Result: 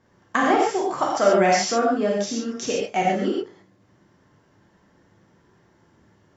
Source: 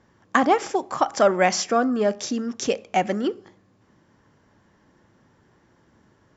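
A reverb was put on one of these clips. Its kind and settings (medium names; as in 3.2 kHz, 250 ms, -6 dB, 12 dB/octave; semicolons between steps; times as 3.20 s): gated-style reverb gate 160 ms flat, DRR -3.5 dB; trim -4.5 dB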